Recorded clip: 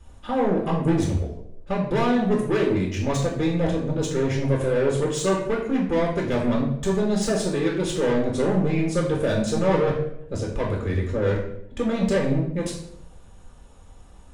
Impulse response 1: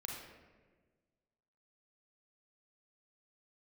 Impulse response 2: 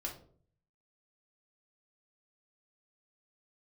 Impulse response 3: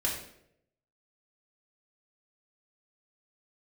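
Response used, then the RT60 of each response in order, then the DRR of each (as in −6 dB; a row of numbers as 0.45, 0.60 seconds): 3; 1.4, 0.50, 0.75 seconds; −1.5, −3.0, −2.5 decibels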